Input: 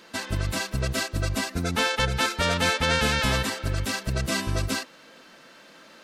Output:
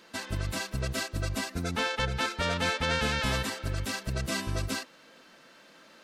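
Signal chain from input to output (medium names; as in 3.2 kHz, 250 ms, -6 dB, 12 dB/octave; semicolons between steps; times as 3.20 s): 1.75–3.25 s: treble shelf 8 kHz -> 11 kHz -10.5 dB; trim -5 dB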